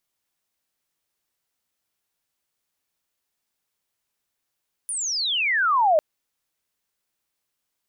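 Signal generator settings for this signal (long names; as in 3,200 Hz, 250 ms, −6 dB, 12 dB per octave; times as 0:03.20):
glide logarithmic 10,000 Hz → 590 Hz −25.5 dBFS → −14 dBFS 1.10 s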